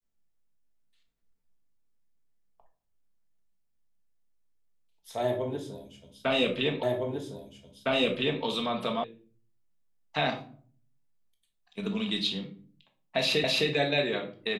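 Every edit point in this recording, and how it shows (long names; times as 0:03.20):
0:06.83: the same again, the last 1.61 s
0:09.04: cut off before it has died away
0:13.44: the same again, the last 0.26 s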